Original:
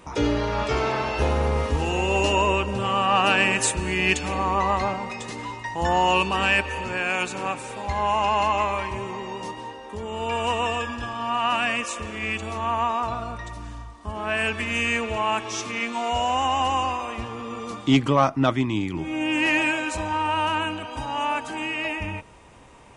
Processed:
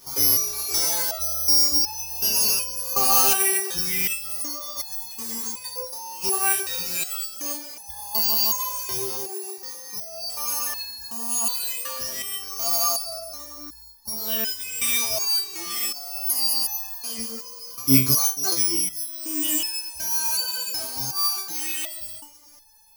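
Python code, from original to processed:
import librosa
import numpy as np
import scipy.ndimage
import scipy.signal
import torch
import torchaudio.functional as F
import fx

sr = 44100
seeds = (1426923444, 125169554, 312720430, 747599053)

y = fx.over_compress(x, sr, threshold_db=-27.0, ratio=-0.5, at=(4.41, 6.31), fade=0.02)
y = (np.kron(scipy.signal.resample_poly(y, 1, 8), np.eye(8)[0]) * 8)[:len(y)]
y = fx.resonator_held(y, sr, hz=2.7, low_hz=130.0, high_hz=870.0)
y = y * 10.0 ** (4.5 / 20.0)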